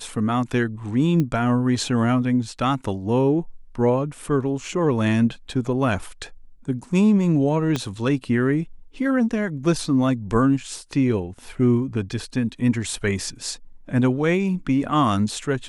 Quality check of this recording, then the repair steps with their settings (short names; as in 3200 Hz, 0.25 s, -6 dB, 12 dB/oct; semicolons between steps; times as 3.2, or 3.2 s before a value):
1.2 pop -13 dBFS
7.76 pop -10 dBFS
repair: de-click